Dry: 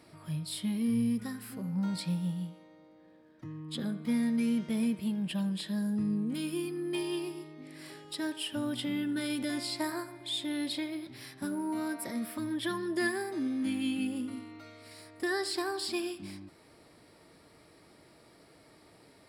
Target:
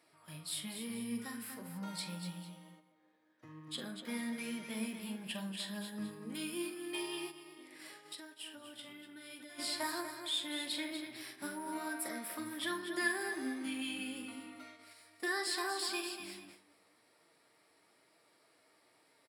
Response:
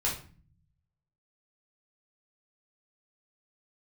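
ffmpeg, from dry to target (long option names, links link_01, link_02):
-filter_complex "[0:a]flanger=delay=5.7:depth=5.5:regen=57:speed=1.1:shape=triangular,aecho=1:1:46|242|450:0.316|0.376|0.126,asplit=3[link_01][link_02][link_03];[link_01]afade=type=out:start_time=7.3:duration=0.02[link_04];[link_02]acompressor=threshold=-46dB:ratio=12,afade=type=in:start_time=7.3:duration=0.02,afade=type=out:start_time=9.58:duration=0.02[link_05];[link_03]afade=type=in:start_time=9.58:duration=0.02[link_06];[link_04][link_05][link_06]amix=inputs=3:normalize=0,agate=range=-7dB:threshold=-52dB:ratio=16:detection=peak,highpass=frequency=900:poles=1,equalizer=frequency=4500:width_type=o:width=0.77:gain=-3,volume=4.5dB"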